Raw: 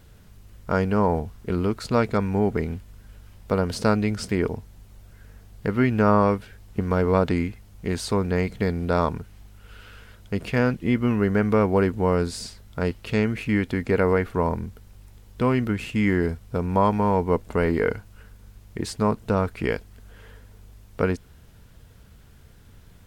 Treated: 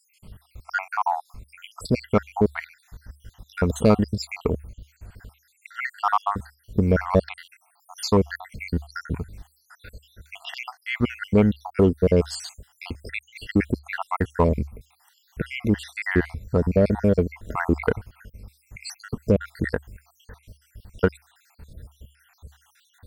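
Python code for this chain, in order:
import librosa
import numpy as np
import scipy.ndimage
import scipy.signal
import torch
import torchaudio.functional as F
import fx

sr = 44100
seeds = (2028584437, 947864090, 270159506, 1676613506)

p1 = fx.spec_dropout(x, sr, seeds[0], share_pct=73)
p2 = fx.peak_eq(p1, sr, hz=72.0, db=8.5, octaves=0.2)
p3 = np.clip(p2, -10.0 ** (-20.5 / 20.0), 10.0 ** (-20.5 / 20.0))
p4 = p2 + (p3 * 10.0 ** (-6.0 / 20.0))
y = p4 * 10.0 ** (2.5 / 20.0)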